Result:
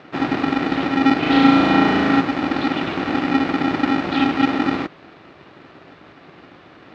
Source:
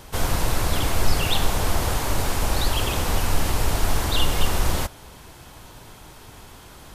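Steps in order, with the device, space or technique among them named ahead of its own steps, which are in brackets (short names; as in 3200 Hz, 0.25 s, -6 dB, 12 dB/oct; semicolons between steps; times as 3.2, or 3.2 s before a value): ring modulator pedal into a guitar cabinet (polarity switched at an audio rate 270 Hz; speaker cabinet 90–3500 Hz, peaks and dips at 220 Hz -8 dB, 890 Hz -4 dB, 3200 Hz -5 dB); 1.19–2.21 flutter echo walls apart 6.2 m, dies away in 1.4 s; gain +1.5 dB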